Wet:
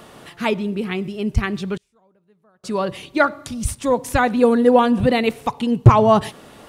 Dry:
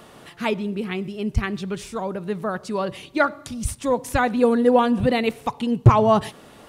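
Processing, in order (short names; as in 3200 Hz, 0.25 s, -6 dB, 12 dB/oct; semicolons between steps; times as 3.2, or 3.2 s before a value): 1.77–2.64 flipped gate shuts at -30 dBFS, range -34 dB; gain +3 dB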